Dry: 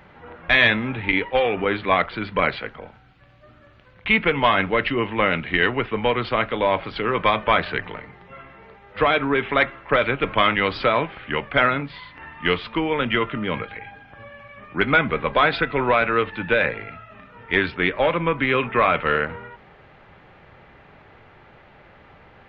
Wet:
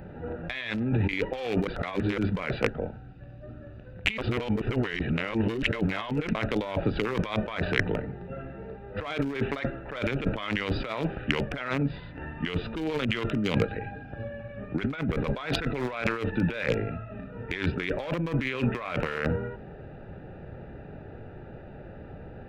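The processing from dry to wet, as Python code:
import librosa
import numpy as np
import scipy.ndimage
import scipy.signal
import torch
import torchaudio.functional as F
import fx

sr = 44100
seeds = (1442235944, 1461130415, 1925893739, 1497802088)

y = fx.peak_eq(x, sr, hz=4300.0, db=5.5, octaves=1.2, at=(13.18, 14.28))
y = fx.edit(y, sr, fx.reverse_span(start_s=1.67, length_s=0.51),
    fx.reverse_span(start_s=4.18, length_s=2.17), tone=tone)
y = fx.wiener(y, sr, points=41)
y = fx.over_compress(y, sr, threshold_db=-32.0, ratio=-1.0)
y = fx.high_shelf(y, sr, hz=3700.0, db=10.5)
y = F.gain(torch.from_numpy(y), 2.0).numpy()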